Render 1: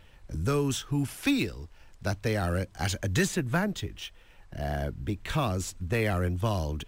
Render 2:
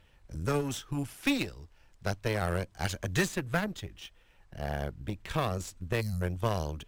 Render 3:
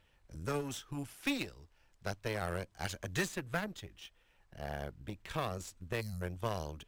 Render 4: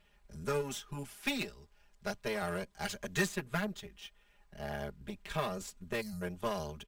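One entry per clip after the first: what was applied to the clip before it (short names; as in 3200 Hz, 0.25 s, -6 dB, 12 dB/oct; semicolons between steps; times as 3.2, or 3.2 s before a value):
added harmonics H 3 -15 dB, 4 -19 dB, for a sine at -15.5 dBFS; spectral gain 6.01–6.22, 250–3900 Hz -27 dB
low shelf 270 Hz -4 dB; gain -5 dB
comb 4.9 ms, depth 97%; gain -1 dB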